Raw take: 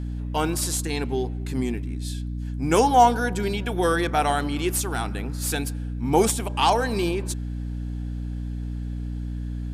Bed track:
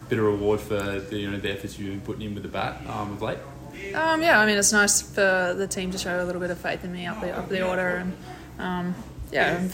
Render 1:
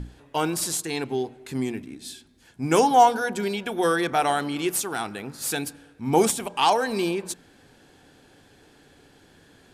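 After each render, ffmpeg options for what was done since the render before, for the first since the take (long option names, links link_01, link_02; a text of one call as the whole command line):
ffmpeg -i in.wav -af "bandreject=frequency=60:width_type=h:width=6,bandreject=frequency=120:width_type=h:width=6,bandreject=frequency=180:width_type=h:width=6,bandreject=frequency=240:width_type=h:width=6,bandreject=frequency=300:width_type=h:width=6" out.wav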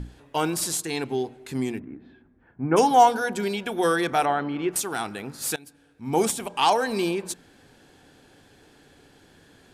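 ffmpeg -i in.wav -filter_complex "[0:a]asplit=3[link_01][link_02][link_03];[link_01]afade=type=out:start_time=1.78:duration=0.02[link_04];[link_02]lowpass=frequency=1700:width=0.5412,lowpass=frequency=1700:width=1.3066,afade=type=in:start_time=1.78:duration=0.02,afade=type=out:start_time=2.76:duration=0.02[link_05];[link_03]afade=type=in:start_time=2.76:duration=0.02[link_06];[link_04][link_05][link_06]amix=inputs=3:normalize=0,asettb=1/sr,asplit=3[link_07][link_08][link_09];[link_07]atrim=end=4.254[link_10];[link_08]atrim=start=4.25:end=4.76,asetpts=PTS-STARTPTS,afade=type=in:duration=0.004:curve=qsin,afade=type=out:start_time=0.506:duration=0.004:curve=qsin,lowpass=2000[link_11];[link_09]atrim=start=4.756[link_12];[link_10][link_11]acrossfade=duration=0.004:curve1=hsin:curve2=qsin[link_13];[link_13][link_12]acrossfade=duration=0.004:curve1=qsin:curve2=hsin,asplit=2[link_14][link_15];[link_14]atrim=end=5.56,asetpts=PTS-STARTPTS,afade=type=out:start_time=5.556:duration=0.004:curve=hsin:silence=0.0668344[link_16];[link_15]atrim=start=5.56,asetpts=PTS-STARTPTS,afade=type=in:duration=1.32:curve=qsin:silence=0.0668344[link_17];[link_16][link_17]concat=n=2:v=0:a=1" out.wav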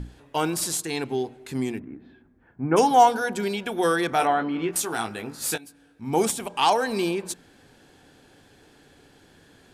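ffmpeg -i in.wav -filter_complex "[0:a]asettb=1/sr,asplit=3[link_01][link_02][link_03];[link_01]atrim=end=4.184[link_04];[link_02]atrim=start=4.18:end=6.05,asetpts=PTS-STARTPTS,afade=type=in:duration=0.004:curve=qsin,afade=type=out:start_time=1.866:duration=0.004:curve=qsin,asplit=2[link_05][link_06];[link_06]adelay=18,volume=-6dB[link_07];[link_05][link_07]amix=inputs=2:normalize=0,atrim=end_sample=82467[link_08];[link_03]atrim=start=6.046[link_09];[link_04][link_08]acrossfade=duration=0.004:curve1=hsin:curve2=qsin[link_10];[link_10][link_09]acrossfade=duration=0.004:curve1=qsin:curve2=hsin" out.wav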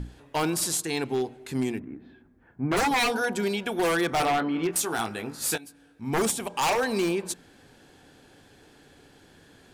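ffmpeg -i in.wav -af "aeval=exprs='0.119*(abs(mod(val(0)/0.119+3,4)-2)-1)':channel_layout=same" out.wav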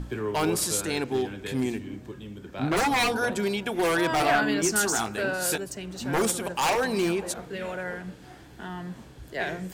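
ffmpeg -i in.wav -i bed.wav -filter_complex "[1:a]volume=-8.5dB[link_01];[0:a][link_01]amix=inputs=2:normalize=0" out.wav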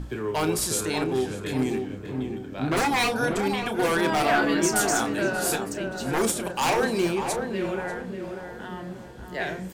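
ffmpeg -i in.wav -filter_complex "[0:a]asplit=2[link_01][link_02];[link_02]adelay=31,volume=-11dB[link_03];[link_01][link_03]amix=inputs=2:normalize=0,asplit=2[link_04][link_05];[link_05]adelay=590,lowpass=frequency=1200:poles=1,volume=-4.5dB,asplit=2[link_06][link_07];[link_07]adelay=590,lowpass=frequency=1200:poles=1,volume=0.47,asplit=2[link_08][link_09];[link_09]adelay=590,lowpass=frequency=1200:poles=1,volume=0.47,asplit=2[link_10][link_11];[link_11]adelay=590,lowpass=frequency=1200:poles=1,volume=0.47,asplit=2[link_12][link_13];[link_13]adelay=590,lowpass=frequency=1200:poles=1,volume=0.47,asplit=2[link_14][link_15];[link_15]adelay=590,lowpass=frequency=1200:poles=1,volume=0.47[link_16];[link_04][link_06][link_08][link_10][link_12][link_14][link_16]amix=inputs=7:normalize=0" out.wav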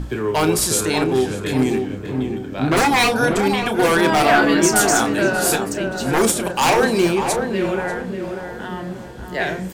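ffmpeg -i in.wav -af "volume=7.5dB" out.wav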